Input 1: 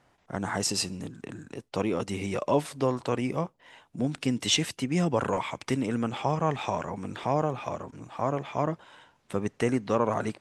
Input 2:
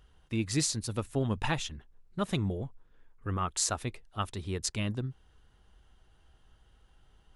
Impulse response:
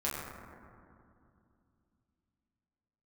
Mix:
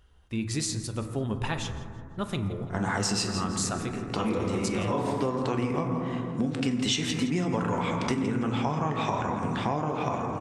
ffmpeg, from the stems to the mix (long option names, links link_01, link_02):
-filter_complex "[0:a]lowpass=8300,equalizer=frequency=590:width_type=o:width=0.42:gain=-6,adelay=2400,volume=2dB,asplit=3[link_01][link_02][link_03];[link_02]volume=-5dB[link_04];[link_03]volume=-9dB[link_05];[1:a]volume=-2dB,asplit=4[link_06][link_07][link_08][link_09];[link_07]volume=-10dB[link_10];[link_08]volume=-16.5dB[link_11];[link_09]apad=whole_len=564713[link_12];[link_01][link_12]sidechaincompress=threshold=-49dB:ratio=8:attack=16:release=174[link_13];[2:a]atrim=start_sample=2205[link_14];[link_04][link_10]amix=inputs=2:normalize=0[link_15];[link_15][link_14]afir=irnorm=-1:irlink=0[link_16];[link_05][link_11]amix=inputs=2:normalize=0,aecho=0:1:167|334|501|668|835:1|0.34|0.116|0.0393|0.0134[link_17];[link_13][link_06][link_16][link_17]amix=inputs=4:normalize=0,acompressor=threshold=-24dB:ratio=6"